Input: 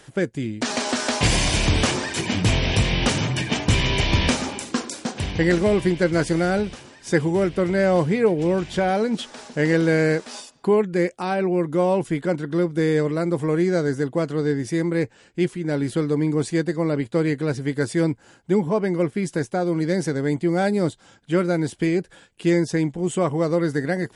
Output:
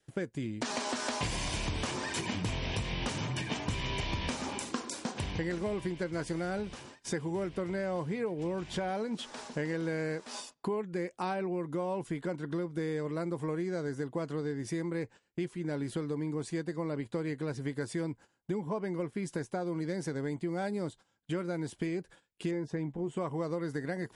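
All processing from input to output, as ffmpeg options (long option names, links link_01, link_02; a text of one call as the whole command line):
ffmpeg -i in.wav -filter_complex "[0:a]asettb=1/sr,asplit=3[link_01][link_02][link_03];[link_01]atrim=end=22.514[link_04];[link_02]atrim=start=22.51:end=23.17,asetpts=PTS-STARTPTS,afade=type=in:duration=0.004:curve=qsin,afade=type=out:start_time=0.656:duration=0.004:curve=qsin,lowpass=frequency=1500:poles=1,asplit=2[link_05][link_06];[link_06]adelay=14,volume=-12dB[link_07];[link_05][link_07]amix=inputs=2:normalize=0,atrim=end_sample=29106[link_08];[link_03]atrim=start=23.166[link_09];[link_04][link_08]acrossfade=duration=0.004:curve1=hsin:curve2=qsin[link_10];[link_10][link_09]acrossfade=duration=0.004:curve1=qsin:curve2=hsin,acompressor=threshold=-27dB:ratio=5,adynamicequalizer=threshold=0.00251:dfrequency=1000:dqfactor=3.8:tfrequency=1000:tqfactor=3.8:attack=5:release=100:ratio=0.375:range=2.5:mode=boostabove:tftype=bell,agate=range=-20dB:threshold=-45dB:ratio=16:detection=peak,volume=-5dB" out.wav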